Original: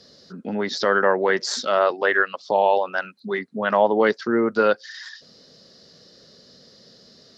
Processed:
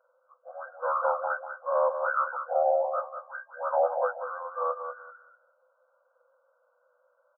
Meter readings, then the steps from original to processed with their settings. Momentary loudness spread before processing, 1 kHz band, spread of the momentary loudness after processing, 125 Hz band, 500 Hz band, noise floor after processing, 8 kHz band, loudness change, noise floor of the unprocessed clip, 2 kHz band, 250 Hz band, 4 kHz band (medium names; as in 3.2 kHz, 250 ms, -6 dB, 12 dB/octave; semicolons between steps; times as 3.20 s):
10 LU, -5.0 dB, 15 LU, under -40 dB, -8.0 dB, -71 dBFS, under -40 dB, -8.0 dB, -52 dBFS, -13.0 dB, under -40 dB, under -40 dB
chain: frequency axis rescaled in octaves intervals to 89%; feedback delay 192 ms, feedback 20%, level -8 dB; FFT band-pass 490–1600 Hz; trim -5 dB